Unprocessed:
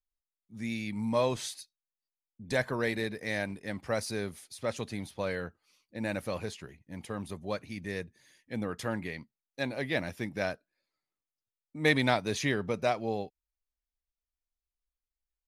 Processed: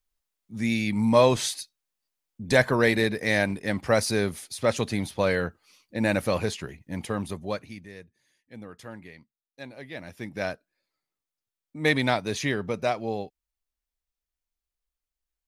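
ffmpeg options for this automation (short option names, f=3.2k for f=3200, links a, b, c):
-af "volume=20dB,afade=t=out:st=6.95:d=0.66:silence=0.446684,afade=t=out:st=7.61:d=0.28:silence=0.298538,afade=t=in:st=9.97:d=0.5:silence=0.298538"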